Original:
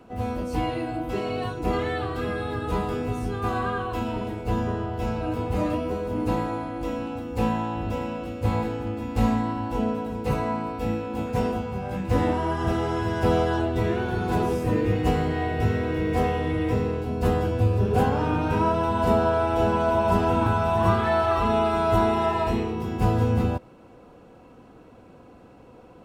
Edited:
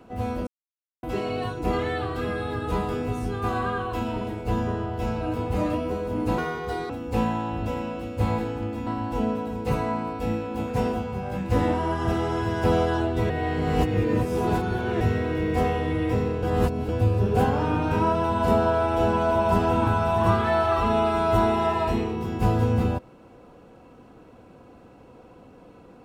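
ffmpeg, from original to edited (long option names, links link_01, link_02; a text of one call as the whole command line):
ffmpeg -i in.wav -filter_complex "[0:a]asplit=10[link_01][link_02][link_03][link_04][link_05][link_06][link_07][link_08][link_09][link_10];[link_01]atrim=end=0.47,asetpts=PTS-STARTPTS,afade=type=out:start_time=0.466:duration=0.004:curve=hsin[link_11];[link_02]atrim=start=0.47:end=1.03,asetpts=PTS-STARTPTS,volume=0[link_12];[link_03]atrim=start=1.03:end=6.384,asetpts=PTS-STARTPTS,afade=type=in:duration=0.004:curve=hsin[link_13];[link_04]atrim=start=6.38:end=7.14,asetpts=PTS-STARTPTS,asetrate=64827,aresample=44100[link_14];[link_05]atrim=start=7.136:end=9.112[link_15];[link_06]atrim=start=9.458:end=13.892[link_16];[link_07]atrim=start=13.888:end=15.602,asetpts=PTS-STARTPTS,areverse[link_17];[link_08]atrim=start=15.598:end=17.022[link_18];[link_09]atrim=start=17.018:end=17.482,asetpts=PTS-STARTPTS,areverse[link_19];[link_10]atrim=start=17.478[link_20];[link_11][link_12][link_13]concat=n=3:v=0:a=1[link_21];[link_21][link_14]acrossfade=duration=0.004:curve1=hsin:curve2=hsin[link_22];[link_22][link_15]acrossfade=duration=0.004:curve1=hsin:curve2=hsin[link_23];[link_23][link_16]acrossfade=duration=0.004:curve1=hsin:curve2=hsin[link_24];[link_24][link_17]acrossfade=duration=0.004:curve1=hsin:curve2=hsin[link_25];[link_25][link_18]acrossfade=duration=0.004:curve1=hsin:curve2=hsin[link_26];[link_26][link_19]acrossfade=duration=0.004:curve1=hsin:curve2=hsin[link_27];[link_27][link_20]acrossfade=duration=0.004:curve1=hsin:curve2=hsin" out.wav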